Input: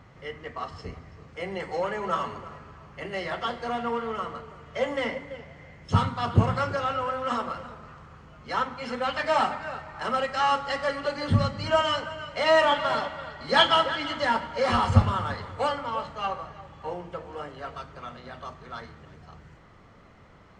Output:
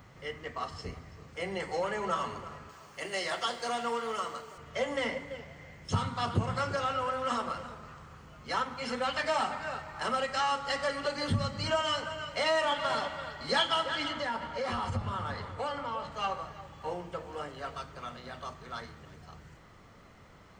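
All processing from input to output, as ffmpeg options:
ffmpeg -i in.wav -filter_complex "[0:a]asettb=1/sr,asplit=3[link_01][link_02][link_03];[link_01]atrim=end=2.694[link_04];[link_02]atrim=start=2.69:end=4.58,asetpts=PTS-STARTPTS,afade=type=in:duration=0.004:curve=qsin,afade=type=out:start_time=1.886:duration=0.004:curve=qsin,highpass=frequency=110:poles=1,bass=frequency=250:gain=-7,treble=frequency=4000:gain=9[link_05];[link_03]atrim=start=4.576[link_06];[link_04][link_05]acrossfade=duration=0.004:curve1=hsin:curve2=qsin[link_07];[link_07][link_06]acrossfade=duration=0.004:curve1=qsin:curve2=hsin,asettb=1/sr,asplit=3[link_08][link_09][link_10];[link_08]atrim=end=14.084[link_11];[link_09]atrim=start=14.08:end=16.12,asetpts=PTS-STARTPTS,afade=type=in:duration=0.004:curve=qsin,afade=type=out:start_time=2.036:duration=0.004:curve=qsin,highshelf=frequency=4900:gain=-9.5,acompressor=threshold=-30dB:ratio=2.5:attack=3.2:release=140:knee=1:detection=peak[link_12];[link_10]atrim=start=16.116[link_13];[link_11][link_12]acrossfade=duration=0.004:curve1=hsin:curve2=qsin[link_14];[link_14][link_13]acrossfade=duration=0.004:curve1=qsin:curve2=hsin,aemphasis=mode=production:type=50kf,acompressor=threshold=-25dB:ratio=2.5,volume=-2.5dB" out.wav

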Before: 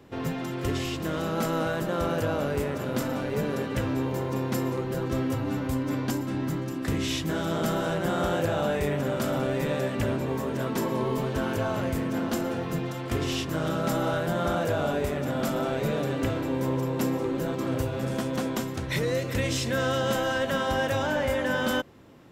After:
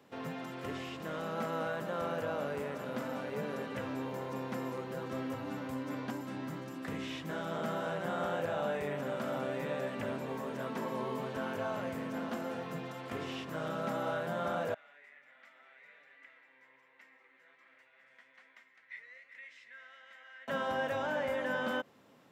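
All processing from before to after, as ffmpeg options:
ffmpeg -i in.wav -filter_complex "[0:a]asettb=1/sr,asplit=3[link_01][link_02][link_03];[link_01]atrim=end=14.744[link_04];[link_02]atrim=start=14.74:end=20.48,asetpts=PTS-STARTPTS,afade=type=in:duration=0.004:curve=qsin,afade=type=out:start_time=5.736:duration=0.004:curve=qsin,bandpass=frequency=2000:width_type=q:width=7.2,flanger=delay=3.2:depth=5:regen=70:speed=1.3:shape=sinusoidal[link_05];[link_03]atrim=start=20.476[link_06];[link_04][link_05]acrossfade=duration=0.004:curve1=hsin:curve2=qsin[link_07];[link_07][link_06]acrossfade=duration=0.004:curve1=qsin:curve2=hsin,acrossover=split=2800[link_08][link_09];[link_09]acompressor=threshold=-50dB:ratio=4:attack=1:release=60[link_10];[link_08][link_10]amix=inputs=2:normalize=0,highpass=210,equalizer=frequency=340:width=3.2:gain=-9,volume=-6dB" out.wav

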